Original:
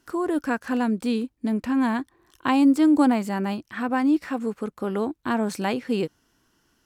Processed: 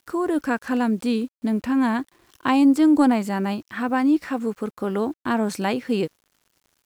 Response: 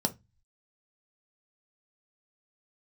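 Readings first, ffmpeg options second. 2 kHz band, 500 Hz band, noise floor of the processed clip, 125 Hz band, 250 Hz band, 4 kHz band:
+2.0 dB, +2.0 dB, -76 dBFS, n/a, +1.5 dB, +1.5 dB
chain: -af "acontrast=25,acrusher=bits=8:mix=0:aa=0.000001,volume=-3dB"

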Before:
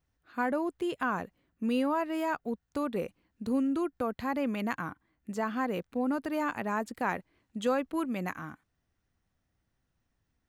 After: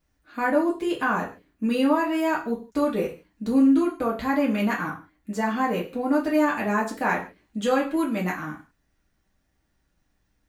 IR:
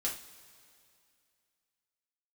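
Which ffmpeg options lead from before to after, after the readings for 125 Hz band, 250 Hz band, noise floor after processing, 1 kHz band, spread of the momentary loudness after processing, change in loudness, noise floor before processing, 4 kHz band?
+7.5 dB, +8.5 dB, -72 dBFS, +7.0 dB, 12 LU, +8.0 dB, -80 dBFS, +7.5 dB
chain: -filter_complex "[1:a]atrim=start_sample=2205,afade=t=out:st=0.25:d=0.01,atrim=end_sample=11466,asetrate=52920,aresample=44100[a];[0:a][a]afir=irnorm=-1:irlink=0,volume=6.5dB"

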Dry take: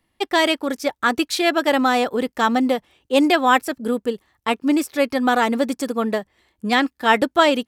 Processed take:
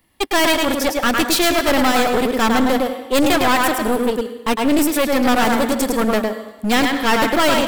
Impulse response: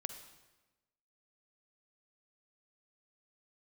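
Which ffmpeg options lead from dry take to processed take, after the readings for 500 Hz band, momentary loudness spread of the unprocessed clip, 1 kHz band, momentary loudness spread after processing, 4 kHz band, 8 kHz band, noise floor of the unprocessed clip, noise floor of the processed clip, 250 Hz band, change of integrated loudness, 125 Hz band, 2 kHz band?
+2.5 dB, 8 LU, +1.5 dB, 5 LU, +4.0 dB, +10.0 dB, -72 dBFS, -37 dBFS, +3.0 dB, +2.5 dB, n/a, +2.5 dB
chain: -filter_complex "[0:a]asplit=2[a][b];[b]highpass=f=210:w=0.5412,highpass=f=210:w=1.3066[c];[1:a]atrim=start_sample=2205,adelay=106[d];[c][d]afir=irnorm=-1:irlink=0,volume=-2.5dB[e];[a][e]amix=inputs=2:normalize=0,apsyclip=14dB,aeval=exprs='clip(val(0),-1,0.224)':c=same,highshelf=f=11k:g=12,volume=-7.5dB"

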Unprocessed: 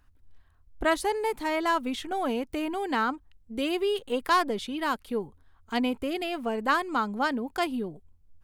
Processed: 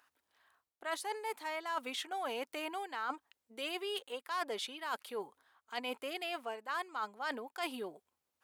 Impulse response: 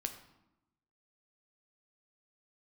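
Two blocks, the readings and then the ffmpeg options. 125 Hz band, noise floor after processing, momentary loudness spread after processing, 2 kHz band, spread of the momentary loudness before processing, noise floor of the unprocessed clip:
under -20 dB, under -85 dBFS, 6 LU, -9.5 dB, 7 LU, -60 dBFS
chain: -af "highpass=660,areverse,acompressor=threshold=-39dB:ratio=6,areverse,volume=3dB"

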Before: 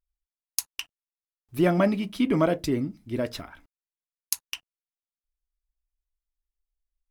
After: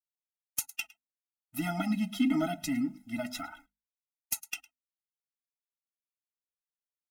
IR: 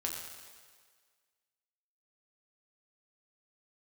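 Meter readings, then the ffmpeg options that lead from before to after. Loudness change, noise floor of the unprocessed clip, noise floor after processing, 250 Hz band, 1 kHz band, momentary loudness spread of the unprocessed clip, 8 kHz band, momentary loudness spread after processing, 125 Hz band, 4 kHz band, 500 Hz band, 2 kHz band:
-7.0 dB, under -85 dBFS, under -85 dBFS, -4.5 dB, -6.5 dB, 16 LU, -3.5 dB, 13 LU, -10.0 dB, -5.5 dB, -14.5 dB, -3.5 dB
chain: -filter_complex "[0:a]highshelf=f=7.2k:g=7,acrossover=split=340|3000[a][b][c];[b]acompressor=threshold=-32dB:ratio=3[d];[a][d][c]amix=inputs=3:normalize=0,asplit=2[e][f];[f]aecho=0:1:108:0.0668[g];[e][g]amix=inputs=2:normalize=0,flanger=delay=3.1:depth=1.8:regen=28:speed=1.7:shape=triangular,agate=range=-33dB:threshold=-51dB:ratio=3:detection=peak,equalizer=f=4.1k:t=o:w=0.7:g=-7,bandreject=f=50:t=h:w=6,bandreject=f=100:t=h:w=6,bandreject=f=150:t=h:w=6,bandreject=f=200:t=h:w=6,bandreject=f=250:t=h:w=6,asplit=2[h][i];[i]highpass=f=720:p=1,volume=20dB,asoftclip=type=tanh:threshold=-4dB[j];[h][j]amix=inputs=2:normalize=0,lowpass=f=6.1k:p=1,volume=-6dB,afftfilt=real='re*eq(mod(floor(b*sr/1024/310),2),0)':imag='im*eq(mod(floor(b*sr/1024/310),2),0)':win_size=1024:overlap=0.75,volume=-4.5dB"

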